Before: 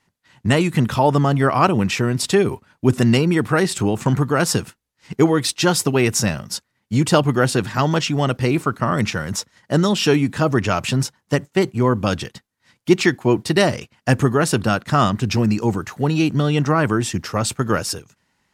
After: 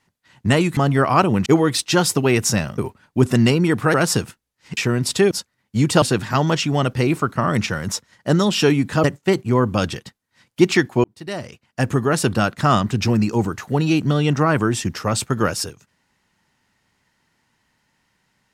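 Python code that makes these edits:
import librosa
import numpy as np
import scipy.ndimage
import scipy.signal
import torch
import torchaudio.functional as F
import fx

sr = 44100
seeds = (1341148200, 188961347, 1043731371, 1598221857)

y = fx.edit(x, sr, fx.cut(start_s=0.77, length_s=0.45),
    fx.swap(start_s=1.91, length_s=0.54, other_s=5.16, other_length_s=1.32),
    fx.cut(start_s=3.61, length_s=0.72),
    fx.cut(start_s=7.19, length_s=0.27),
    fx.cut(start_s=10.48, length_s=0.85),
    fx.fade_in_span(start_s=13.33, length_s=1.24), tone=tone)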